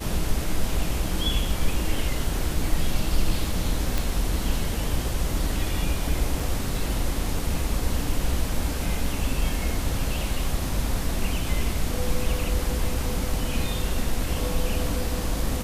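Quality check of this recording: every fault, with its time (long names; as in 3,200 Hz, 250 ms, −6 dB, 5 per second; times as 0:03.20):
0:03.98: click
0:06.40: drop-out 4 ms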